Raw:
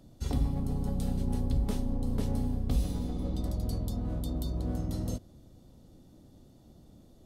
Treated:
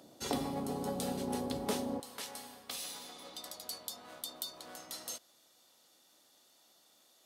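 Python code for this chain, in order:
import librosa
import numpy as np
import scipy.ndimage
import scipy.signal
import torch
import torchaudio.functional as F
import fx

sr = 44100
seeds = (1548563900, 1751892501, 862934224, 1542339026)

y = fx.highpass(x, sr, hz=fx.steps((0.0, 410.0), (2.0, 1400.0)), slope=12)
y = y * 10.0 ** (7.0 / 20.0)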